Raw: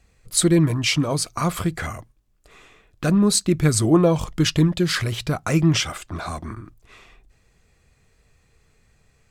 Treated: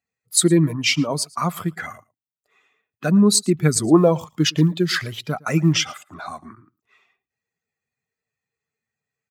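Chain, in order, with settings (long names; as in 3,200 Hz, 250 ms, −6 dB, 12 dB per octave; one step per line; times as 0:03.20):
spectral dynamics exaggerated over time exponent 1.5
high-pass filter 150 Hz 24 dB per octave
0:03.97–0:05.76: floating-point word with a short mantissa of 6 bits
on a send: single-tap delay 112 ms −23.5 dB
on the sum: level +4 dB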